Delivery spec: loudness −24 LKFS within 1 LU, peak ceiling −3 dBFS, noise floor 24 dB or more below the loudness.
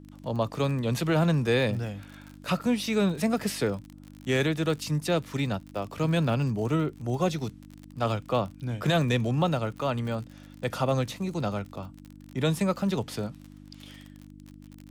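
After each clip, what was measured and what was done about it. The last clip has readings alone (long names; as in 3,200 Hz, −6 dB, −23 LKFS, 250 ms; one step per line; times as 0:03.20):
crackle rate 45 per second; mains hum 50 Hz; hum harmonics up to 300 Hz; level of the hum −47 dBFS; integrated loudness −28.0 LKFS; sample peak −13.5 dBFS; target loudness −24.0 LKFS
→ click removal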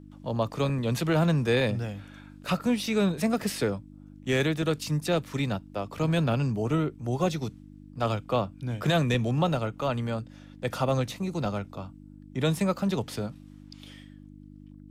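crackle rate 0.067 per second; mains hum 50 Hz; hum harmonics up to 300 Hz; level of the hum −47 dBFS
→ hum removal 50 Hz, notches 6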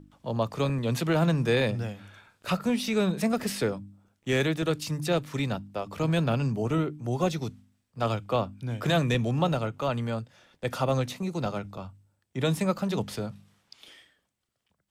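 mains hum none found; integrated loudness −28.5 LKFS; sample peak −13.0 dBFS; target loudness −24.0 LKFS
→ level +4.5 dB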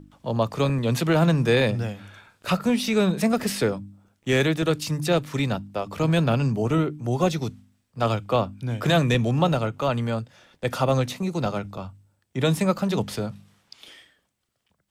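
integrated loudness −24.0 LKFS; sample peak −8.5 dBFS; background noise floor −73 dBFS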